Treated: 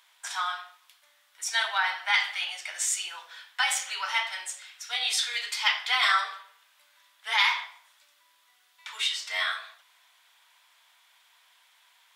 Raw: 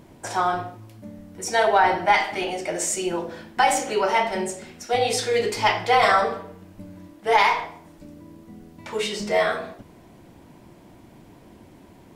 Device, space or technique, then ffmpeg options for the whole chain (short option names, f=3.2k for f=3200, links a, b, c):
headphones lying on a table: -af "highpass=f=1.2k:w=0.5412,highpass=f=1.2k:w=1.3066,equalizer=f=3.5k:t=o:w=0.4:g=8.5,volume=-2dB"